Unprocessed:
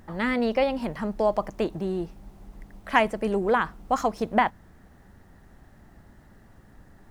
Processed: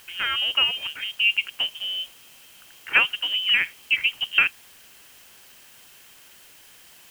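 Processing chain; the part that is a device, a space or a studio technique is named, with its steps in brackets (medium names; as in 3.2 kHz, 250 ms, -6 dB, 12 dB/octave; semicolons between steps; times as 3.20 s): scrambled radio voice (band-pass 330–3000 Hz; frequency inversion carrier 3.4 kHz; white noise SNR 24 dB); trim +2.5 dB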